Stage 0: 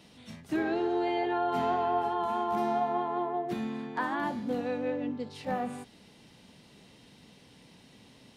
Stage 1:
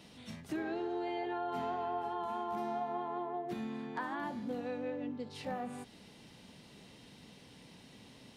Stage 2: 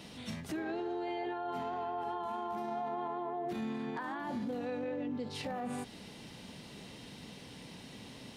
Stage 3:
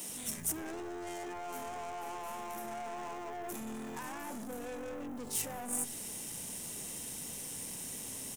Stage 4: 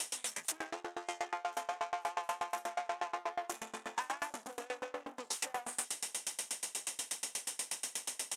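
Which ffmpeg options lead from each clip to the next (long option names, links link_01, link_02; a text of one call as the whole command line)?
ffmpeg -i in.wav -af "acompressor=threshold=-41dB:ratio=2" out.wav
ffmpeg -i in.wav -af "alimiter=level_in=13dB:limit=-24dB:level=0:latency=1:release=36,volume=-13dB,volume=6.5dB" out.wav
ffmpeg -i in.wav -filter_complex "[0:a]aeval=exprs='(tanh(112*val(0)+0.35)-tanh(0.35))/112':channel_layout=same,aexciter=amount=14.8:drive=3.6:freq=6400,acrossover=split=170[link_01][link_02];[link_01]adelay=90[link_03];[link_03][link_02]amix=inputs=2:normalize=0,volume=2dB" out.wav
ffmpeg -i in.wav -af "asoftclip=type=hard:threshold=-37.5dB,highpass=710,lowpass=7900,aeval=exprs='val(0)*pow(10,-29*if(lt(mod(8.3*n/s,1),2*abs(8.3)/1000),1-mod(8.3*n/s,1)/(2*abs(8.3)/1000),(mod(8.3*n/s,1)-2*abs(8.3)/1000)/(1-2*abs(8.3)/1000))/20)':channel_layout=same,volume=14.5dB" out.wav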